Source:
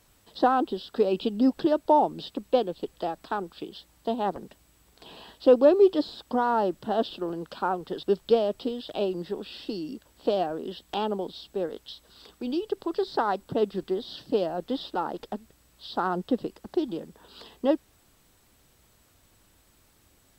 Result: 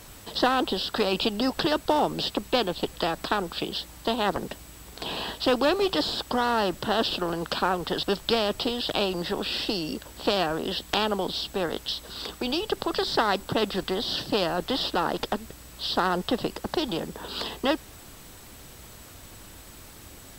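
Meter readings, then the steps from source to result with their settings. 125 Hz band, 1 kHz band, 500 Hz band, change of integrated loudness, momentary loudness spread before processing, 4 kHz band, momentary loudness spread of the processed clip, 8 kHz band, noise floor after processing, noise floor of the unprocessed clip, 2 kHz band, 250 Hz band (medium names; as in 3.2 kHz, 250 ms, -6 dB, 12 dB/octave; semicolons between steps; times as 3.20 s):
+5.5 dB, +0.5 dB, -2.0 dB, +0.5 dB, 15 LU, +12.5 dB, 21 LU, no reading, -47 dBFS, -63 dBFS, +9.5 dB, -0.5 dB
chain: spectrum-flattening compressor 2:1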